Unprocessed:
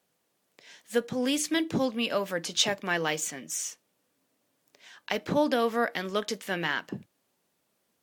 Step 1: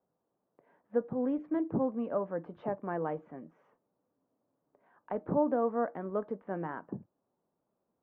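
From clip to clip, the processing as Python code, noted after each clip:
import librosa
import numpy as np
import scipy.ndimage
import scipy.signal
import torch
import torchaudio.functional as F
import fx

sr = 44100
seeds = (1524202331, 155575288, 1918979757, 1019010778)

y = scipy.signal.sosfilt(scipy.signal.butter(4, 1100.0, 'lowpass', fs=sr, output='sos'), x)
y = y * 10.0 ** (-3.0 / 20.0)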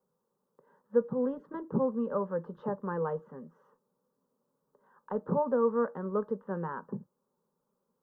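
y = fx.fixed_phaser(x, sr, hz=460.0, stages=8)
y = y * 10.0 ** (4.5 / 20.0)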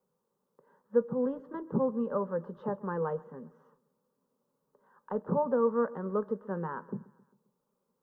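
y = fx.echo_feedback(x, sr, ms=133, feedback_pct=53, wet_db=-22.0)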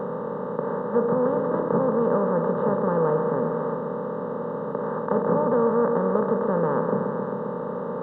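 y = fx.bin_compress(x, sr, power=0.2)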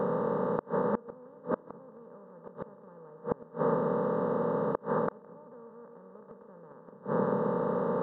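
y = fx.gate_flip(x, sr, shuts_db=-15.0, range_db=-29)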